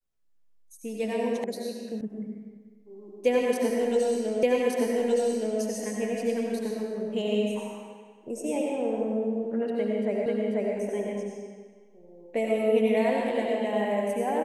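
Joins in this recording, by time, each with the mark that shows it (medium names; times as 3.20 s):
1.44 s: sound stops dead
2.01 s: sound stops dead
4.43 s: repeat of the last 1.17 s
10.26 s: repeat of the last 0.49 s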